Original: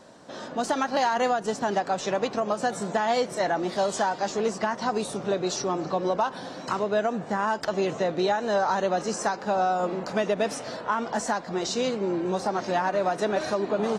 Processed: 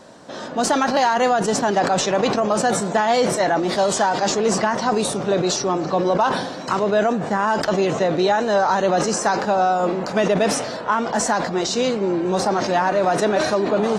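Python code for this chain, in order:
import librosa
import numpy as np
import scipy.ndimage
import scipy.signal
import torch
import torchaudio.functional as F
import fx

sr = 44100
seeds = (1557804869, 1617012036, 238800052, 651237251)

y = fx.sustainer(x, sr, db_per_s=52.0)
y = y * librosa.db_to_amplitude(6.0)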